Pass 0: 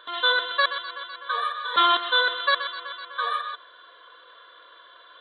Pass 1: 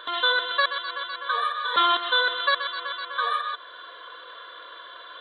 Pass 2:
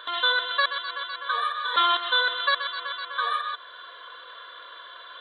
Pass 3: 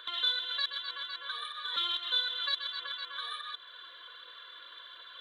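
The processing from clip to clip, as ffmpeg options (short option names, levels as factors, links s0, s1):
-af "acompressor=threshold=0.00891:ratio=1.5,volume=2.37"
-af "lowshelf=f=380:g=-10.5"
-filter_complex "[0:a]acrossover=split=250|3000[s0][s1][s2];[s1]acompressor=threshold=0.0282:ratio=6[s3];[s0][s3][s2]amix=inputs=3:normalize=0,equalizer=f=740:w=0.51:g=-14.5,aphaser=in_gain=1:out_gain=1:delay=3.7:decay=0.31:speed=1.4:type=triangular"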